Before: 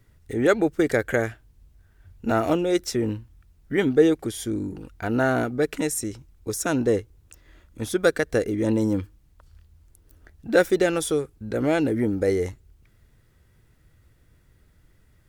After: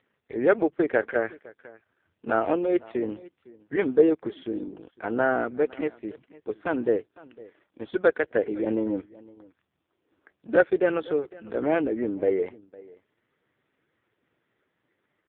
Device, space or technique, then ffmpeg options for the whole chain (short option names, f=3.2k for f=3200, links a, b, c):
satellite phone: -af "highpass=390,lowpass=3.1k,lowshelf=f=310:g=5,aecho=1:1:508:0.0794" -ar 8000 -c:a libopencore_amrnb -b:a 4750